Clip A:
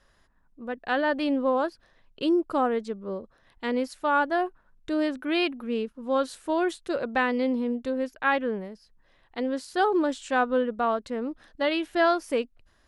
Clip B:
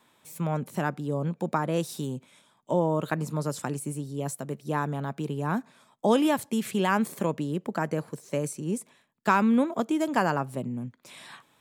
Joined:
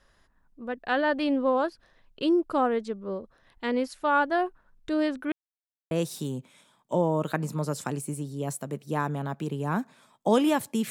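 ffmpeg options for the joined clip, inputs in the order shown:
-filter_complex "[0:a]apad=whole_dur=10.9,atrim=end=10.9,asplit=2[s0][s1];[s0]atrim=end=5.32,asetpts=PTS-STARTPTS,afade=t=out:st=5.316:d=0.004:c=hsin[s2];[s1]atrim=start=5.32:end=5.91,asetpts=PTS-STARTPTS,volume=0[s3];[1:a]atrim=start=1.69:end=6.68,asetpts=PTS-STARTPTS,afade=t=in:d=0.004:c=hsin[s4];[s2][s3][s4]concat=n=3:v=0:a=1"

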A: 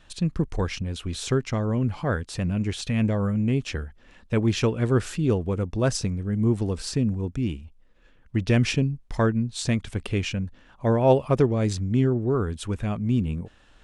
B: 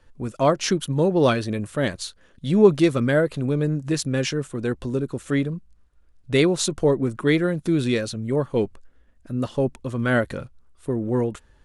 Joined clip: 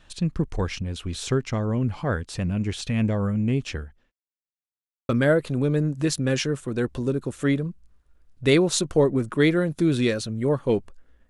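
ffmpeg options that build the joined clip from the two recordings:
-filter_complex "[0:a]apad=whole_dur=11.29,atrim=end=11.29,asplit=2[s0][s1];[s0]atrim=end=4.12,asetpts=PTS-STARTPTS,afade=t=out:st=3.58:d=0.54:c=qsin[s2];[s1]atrim=start=4.12:end=5.09,asetpts=PTS-STARTPTS,volume=0[s3];[1:a]atrim=start=2.96:end=9.16,asetpts=PTS-STARTPTS,afade=t=in:d=0.004:c=hsin[s4];[s2][s3][s4]concat=n=3:v=0:a=1"

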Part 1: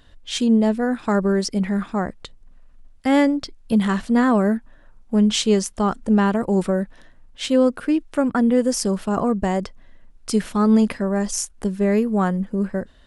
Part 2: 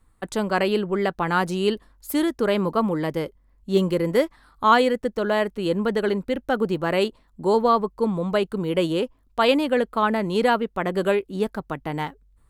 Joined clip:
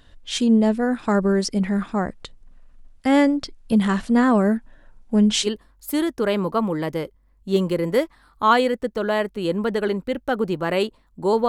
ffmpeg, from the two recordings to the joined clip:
-filter_complex "[0:a]asettb=1/sr,asplit=3[s0][s1][s2];[s0]atrim=end=4.644[s3];[s1]atrim=start=4.64:end=5.49,asetpts=PTS-STARTPTS,afade=t=in:d=0.004:c=qsin,afade=t=out:st=0.846:d=0.004:c=qsin,bandreject=f=1200:w=8.5[s4];[s2]atrim=start=5.486[s5];[s3][s4]acrossfade=d=0.004:c1=hsin:c2=qsin[s6];[s6][s5]acrossfade=d=0.004:c1=qsin:c2=hsin,apad=whole_dur=11.48,atrim=end=11.48,atrim=end=5.49,asetpts=PTS-STARTPTS[s7];[1:a]atrim=start=1.64:end=7.69,asetpts=PTS-STARTPTS[s8];[s7][s8]acrossfade=d=0.06:c1=tri:c2=tri"

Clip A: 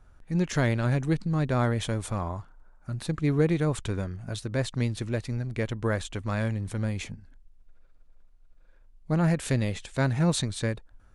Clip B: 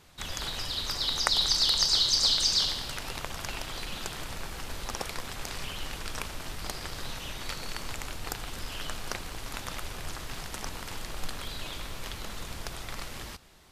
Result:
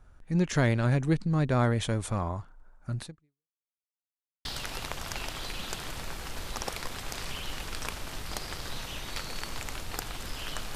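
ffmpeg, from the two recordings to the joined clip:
-filter_complex "[0:a]apad=whole_dur=10.75,atrim=end=10.75,asplit=2[s0][s1];[s0]atrim=end=3.53,asetpts=PTS-STARTPTS,afade=t=out:st=3.02:d=0.51:c=exp[s2];[s1]atrim=start=3.53:end=4.45,asetpts=PTS-STARTPTS,volume=0[s3];[1:a]atrim=start=2.78:end=9.08,asetpts=PTS-STARTPTS,afade=t=in:d=0.004:c=hsin[s4];[s2][s3][s4]concat=n=3:v=0:a=1"

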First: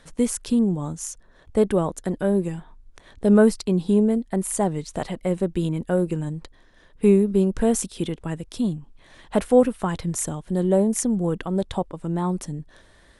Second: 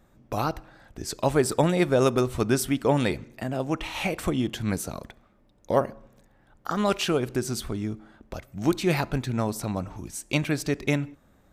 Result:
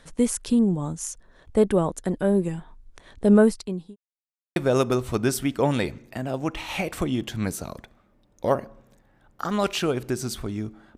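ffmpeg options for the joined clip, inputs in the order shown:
-filter_complex "[0:a]apad=whole_dur=10.97,atrim=end=10.97,asplit=2[s0][s1];[s0]atrim=end=3.96,asetpts=PTS-STARTPTS,afade=t=out:st=3.33:d=0.63[s2];[s1]atrim=start=3.96:end=4.56,asetpts=PTS-STARTPTS,volume=0[s3];[1:a]atrim=start=1.82:end=8.23,asetpts=PTS-STARTPTS,afade=t=in:d=0.004:c=hsin[s4];[s2][s3][s4]concat=n=3:v=0:a=1"

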